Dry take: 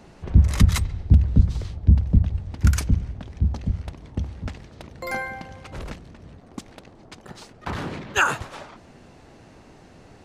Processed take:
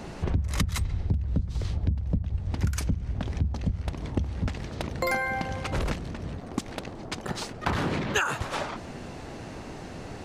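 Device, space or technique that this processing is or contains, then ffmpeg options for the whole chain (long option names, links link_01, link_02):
serial compression, leveller first: -af "acompressor=threshold=-20dB:ratio=2,acompressor=threshold=-33dB:ratio=6,volume=9dB"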